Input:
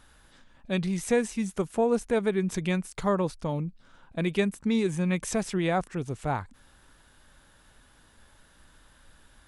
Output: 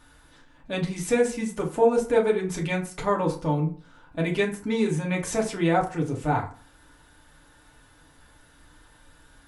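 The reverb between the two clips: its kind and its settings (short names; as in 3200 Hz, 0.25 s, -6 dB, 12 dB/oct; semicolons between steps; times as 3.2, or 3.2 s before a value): FDN reverb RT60 0.42 s, low-frequency decay 0.9×, high-frequency decay 0.55×, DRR -2.5 dB; gain -1 dB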